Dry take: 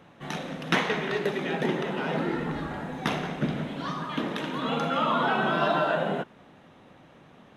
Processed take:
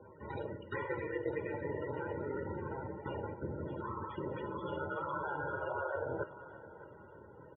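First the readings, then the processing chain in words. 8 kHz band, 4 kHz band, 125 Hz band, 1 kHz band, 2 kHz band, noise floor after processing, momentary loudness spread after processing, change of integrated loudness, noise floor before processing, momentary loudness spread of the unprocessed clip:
below −30 dB, −26.0 dB, −9.5 dB, −12.5 dB, −13.0 dB, −55 dBFS, 14 LU, −11.5 dB, −54 dBFS, 10 LU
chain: low-shelf EQ 230 Hz +4.5 dB
ring modulation 70 Hz
reversed playback
downward compressor 6 to 1, threshold −36 dBFS, peak gain reduction 16 dB
reversed playback
comb filter 2.1 ms, depth 65%
spectral peaks only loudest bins 32
flanger 0.54 Hz, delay 7.7 ms, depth 1.7 ms, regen −84%
band-pass filter 110–2,600 Hz
on a send: feedback echo with a high-pass in the loop 609 ms, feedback 44%, high-pass 730 Hz, level −13 dB
on the sum: level +5.5 dB

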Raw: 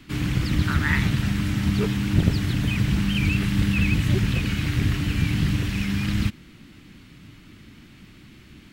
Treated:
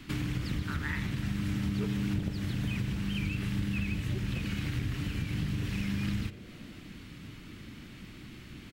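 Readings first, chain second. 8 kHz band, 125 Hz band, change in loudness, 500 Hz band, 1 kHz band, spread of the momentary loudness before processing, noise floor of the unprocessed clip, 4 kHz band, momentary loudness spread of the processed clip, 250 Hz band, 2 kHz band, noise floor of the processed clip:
−10.5 dB, −10.5 dB, −10.0 dB, −10.5 dB, −10.5 dB, 4 LU, −49 dBFS, −10.5 dB, 15 LU, −9.0 dB, −11.0 dB, −48 dBFS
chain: downward compressor 6 to 1, threshold −31 dBFS, peak gain reduction 17 dB
on a send: echo with shifted repeats 149 ms, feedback 48%, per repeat +130 Hz, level −20.5 dB
on the sum: spring reverb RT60 1.2 s, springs 40 ms, DRR 13.5 dB

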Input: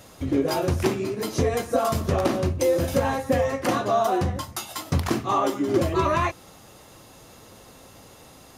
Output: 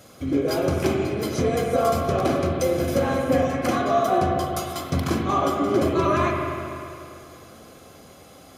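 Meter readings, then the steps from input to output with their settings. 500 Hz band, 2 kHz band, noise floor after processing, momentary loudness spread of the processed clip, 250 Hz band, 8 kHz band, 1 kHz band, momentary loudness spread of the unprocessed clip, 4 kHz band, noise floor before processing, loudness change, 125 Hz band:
+1.5 dB, +1.0 dB, −48 dBFS, 8 LU, +2.5 dB, −1.0 dB, +1.5 dB, 6 LU, 0.0 dB, −49 dBFS, +1.5 dB, 0.0 dB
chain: notch comb filter 910 Hz
spring reverb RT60 2.6 s, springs 45/49 ms, chirp 65 ms, DRR 0.5 dB

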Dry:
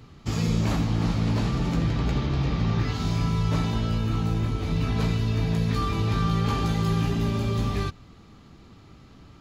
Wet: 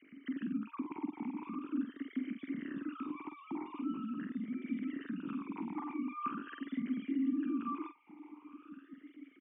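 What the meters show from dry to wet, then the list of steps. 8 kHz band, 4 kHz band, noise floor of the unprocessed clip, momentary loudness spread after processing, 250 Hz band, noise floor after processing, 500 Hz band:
below −35 dB, below −25 dB, −50 dBFS, 16 LU, −8.5 dB, −61 dBFS, −19.0 dB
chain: three sine waves on the formant tracks
parametric band 530 Hz −8.5 dB 1 octave
downward compressor 2 to 1, threshold −44 dBFS, peak gain reduction 15.5 dB
high-frequency loss of the air 330 metres
double-tracking delay 47 ms −8 dB
on a send: delay with a high-pass on its return 990 ms, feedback 68%, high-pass 2,200 Hz, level −16 dB
on the sum: formant filter swept between two vowels i-u 0.43 Hz
level +7 dB

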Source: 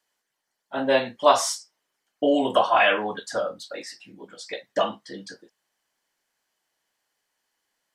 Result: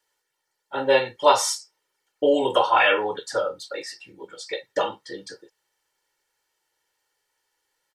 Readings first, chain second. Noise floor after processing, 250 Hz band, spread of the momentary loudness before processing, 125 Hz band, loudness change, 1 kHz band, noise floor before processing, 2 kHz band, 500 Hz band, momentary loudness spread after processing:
−78 dBFS, −3.0 dB, 20 LU, −0.5 dB, +1.0 dB, +1.0 dB, −81 dBFS, +1.5 dB, +1.5 dB, 20 LU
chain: comb filter 2.2 ms, depth 76%

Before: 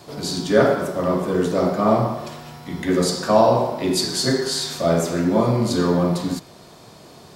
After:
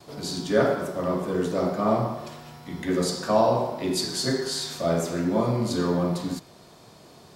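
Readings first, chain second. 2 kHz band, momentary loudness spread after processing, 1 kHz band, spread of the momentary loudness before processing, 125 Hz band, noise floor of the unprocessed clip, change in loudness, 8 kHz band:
−5.5 dB, 11 LU, −5.5 dB, 11 LU, −5.5 dB, −45 dBFS, −5.5 dB, −5.5 dB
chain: noise gate with hold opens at −40 dBFS
level −5.5 dB

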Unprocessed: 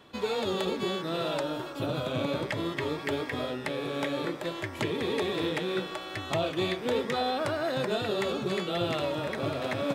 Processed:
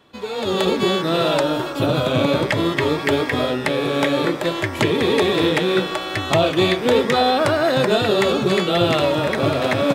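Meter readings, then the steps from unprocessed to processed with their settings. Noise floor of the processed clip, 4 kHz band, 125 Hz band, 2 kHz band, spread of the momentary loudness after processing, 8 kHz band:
−28 dBFS, +12.0 dB, +12.5 dB, +12.0 dB, 4 LU, +12.0 dB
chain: automatic gain control gain up to 12.5 dB

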